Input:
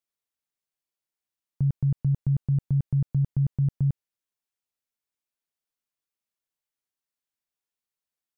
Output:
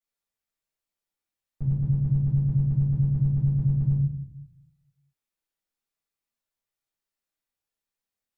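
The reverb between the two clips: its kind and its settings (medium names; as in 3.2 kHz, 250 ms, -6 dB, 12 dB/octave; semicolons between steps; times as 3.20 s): simulated room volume 120 m³, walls mixed, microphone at 3.8 m; trim -11.5 dB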